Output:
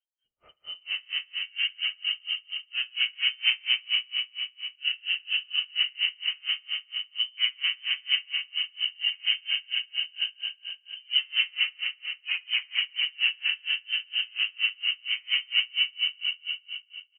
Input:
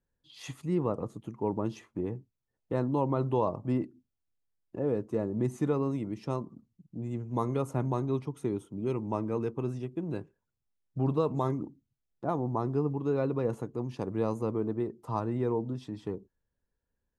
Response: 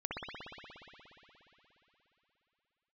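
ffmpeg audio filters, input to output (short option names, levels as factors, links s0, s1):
-filter_complex "[0:a]flanger=delay=2.8:depth=1.3:regen=-43:speed=0.65:shape=triangular,asplit=2[s0][s1];[s1]acompressor=threshold=0.00355:ratio=6,volume=1.19[s2];[s0][s2]amix=inputs=2:normalize=0,asoftclip=type=hard:threshold=0.0422,lowpass=f=2700:t=q:w=0.5098,lowpass=f=2700:t=q:w=0.6013,lowpass=f=2700:t=q:w=0.9,lowpass=f=2700:t=q:w=2.563,afreqshift=-3200,asplit=2[s3][s4];[s4]adelay=130,lowpass=f=2000:p=1,volume=0.501,asplit=2[s5][s6];[s6]adelay=130,lowpass=f=2000:p=1,volume=0.42,asplit=2[s7][s8];[s8]adelay=130,lowpass=f=2000:p=1,volume=0.42,asplit=2[s9][s10];[s10]adelay=130,lowpass=f=2000:p=1,volume=0.42,asplit=2[s11][s12];[s12]adelay=130,lowpass=f=2000:p=1,volume=0.42[s13];[s3][s5][s7][s9][s11][s13]amix=inputs=6:normalize=0[s14];[1:a]atrim=start_sample=2205[s15];[s14][s15]afir=irnorm=-1:irlink=0,acrossover=split=350|1200[s16][s17][s18];[s18]dynaudnorm=f=110:g=17:m=5.62[s19];[s16][s17][s19]amix=inputs=3:normalize=0,aeval=exprs='val(0)*pow(10,-33*(0.5-0.5*cos(2*PI*4.3*n/s))/20)':c=same,volume=0.531"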